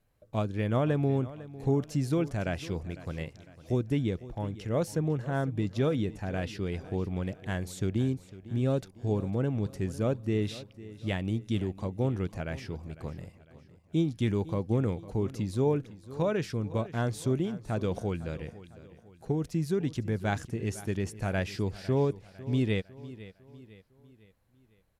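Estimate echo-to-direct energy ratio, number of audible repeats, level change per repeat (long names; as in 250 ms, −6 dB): −16.0 dB, 3, −7.0 dB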